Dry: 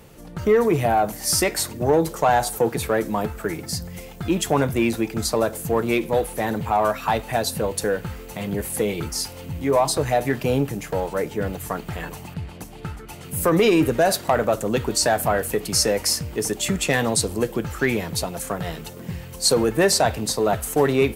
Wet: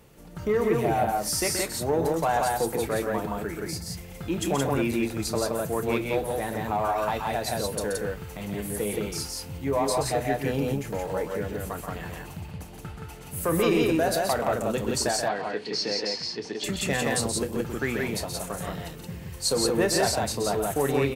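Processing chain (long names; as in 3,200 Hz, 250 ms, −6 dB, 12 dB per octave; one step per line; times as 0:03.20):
0:15.11–0:16.64: loudspeaker in its box 250–4,700 Hz, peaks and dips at 580 Hz −7 dB, 1,300 Hz −6 dB, 4,400 Hz +9 dB
loudspeakers that aren't time-aligned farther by 10 metres −12 dB, 44 metres −7 dB, 59 metres −2 dB
level −7.5 dB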